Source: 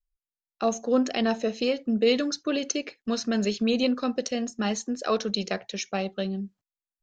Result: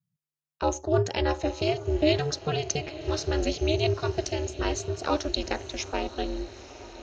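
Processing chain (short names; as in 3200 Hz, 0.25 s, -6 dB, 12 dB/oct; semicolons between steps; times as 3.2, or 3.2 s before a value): diffused feedback echo 0.926 s, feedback 52%, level -14.5 dB; ring modulator 150 Hz; gain +2 dB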